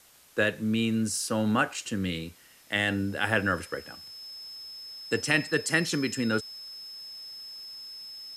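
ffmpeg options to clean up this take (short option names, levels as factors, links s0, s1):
-af "bandreject=f=5200:w=30,agate=range=0.0891:threshold=0.00891"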